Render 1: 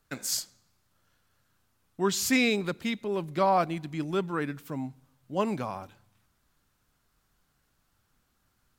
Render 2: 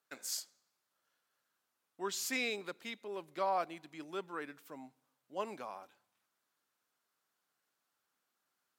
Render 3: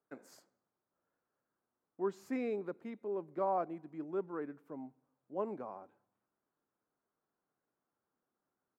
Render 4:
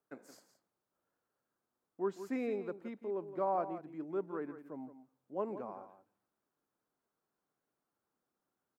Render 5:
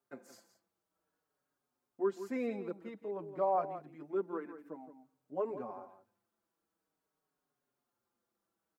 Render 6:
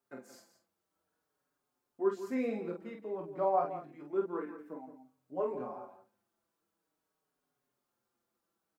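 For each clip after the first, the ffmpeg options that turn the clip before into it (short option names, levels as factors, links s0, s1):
-af "highpass=400,volume=0.355"
-af "firequalizer=gain_entry='entry(400,0);entry(570,-4);entry(3300,-29)':delay=0.05:min_phase=1,volume=1.88"
-af "aecho=1:1:169:0.251"
-filter_complex "[0:a]asplit=2[s0][s1];[s1]adelay=5.2,afreqshift=-0.51[s2];[s0][s2]amix=inputs=2:normalize=1,volume=1.5"
-af "aecho=1:1:23|47:0.473|0.562"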